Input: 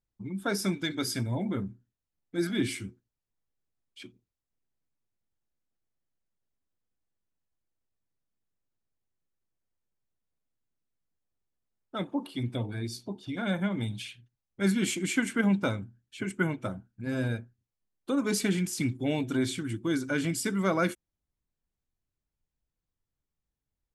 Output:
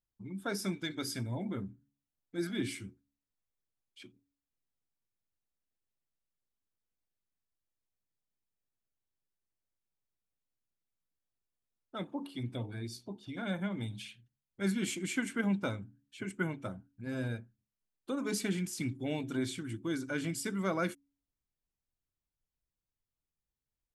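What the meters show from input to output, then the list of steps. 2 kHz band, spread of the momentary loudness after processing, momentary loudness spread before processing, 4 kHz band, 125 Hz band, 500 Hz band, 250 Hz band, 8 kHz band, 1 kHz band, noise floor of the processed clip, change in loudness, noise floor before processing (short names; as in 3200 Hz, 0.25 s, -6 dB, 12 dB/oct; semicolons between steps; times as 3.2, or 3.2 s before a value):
-6.0 dB, 12 LU, 12 LU, -6.0 dB, -6.0 dB, -6.0 dB, -6.5 dB, -6.0 dB, -6.0 dB, under -85 dBFS, -6.0 dB, under -85 dBFS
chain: de-hum 70.3 Hz, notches 4; gain -6 dB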